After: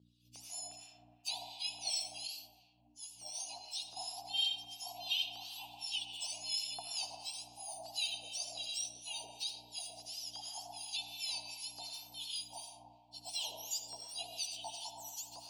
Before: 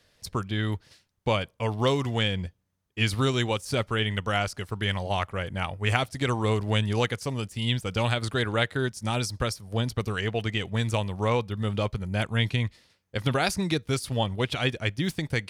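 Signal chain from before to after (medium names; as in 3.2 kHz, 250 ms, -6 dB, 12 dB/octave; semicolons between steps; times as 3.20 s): spectrum inverted on a logarithmic axis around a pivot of 1.5 kHz; elliptic band-stop 850–2700 Hz, stop band 40 dB; differentiator; LFO high-pass square 1.4 Hz 850–2800 Hz; hum 60 Hz, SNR 29 dB; band-pass 130–5700 Hz; algorithmic reverb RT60 2.4 s, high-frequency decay 0.35×, pre-delay 40 ms, DRR 1 dB; harmonic tremolo 2.8 Hz, depth 70%, crossover 1.1 kHz; 2.27–3.96 s: three-phase chorus; trim +2 dB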